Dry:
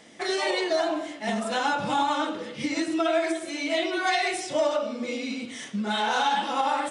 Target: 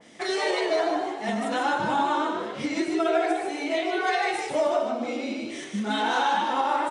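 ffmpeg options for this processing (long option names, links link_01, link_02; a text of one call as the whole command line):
ffmpeg -i in.wav -filter_complex "[0:a]asplit=2[link_01][link_02];[link_02]asplit=4[link_03][link_04][link_05][link_06];[link_03]adelay=151,afreqshift=63,volume=-5dB[link_07];[link_04]adelay=302,afreqshift=126,volume=-14.4dB[link_08];[link_05]adelay=453,afreqshift=189,volume=-23.7dB[link_09];[link_06]adelay=604,afreqshift=252,volume=-33.1dB[link_10];[link_07][link_08][link_09][link_10]amix=inputs=4:normalize=0[link_11];[link_01][link_11]amix=inputs=2:normalize=0,adynamicequalizer=threshold=0.01:dfrequency=2300:dqfactor=0.7:tfrequency=2300:tqfactor=0.7:attack=5:release=100:ratio=0.375:range=3.5:mode=cutabove:tftype=highshelf" out.wav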